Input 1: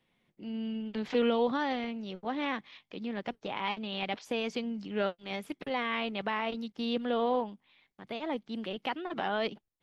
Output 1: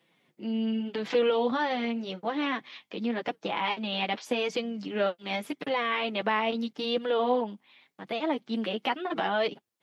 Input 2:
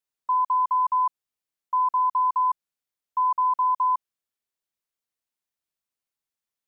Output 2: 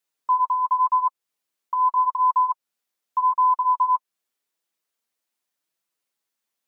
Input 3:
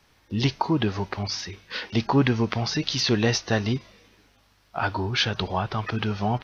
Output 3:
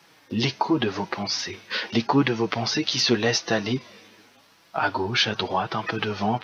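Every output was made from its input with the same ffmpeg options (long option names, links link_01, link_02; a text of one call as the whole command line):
ffmpeg -i in.wav -filter_complex "[0:a]highpass=190,asplit=2[link_01][link_02];[link_02]acompressor=threshold=-33dB:ratio=6,volume=3dB[link_03];[link_01][link_03]amix=inputs=2:normalize=0,flanger=delay=5.9:depth=3.4:regen=-15:speed=0.86:shape=sinusoidal,volume=2.5dB" out.wav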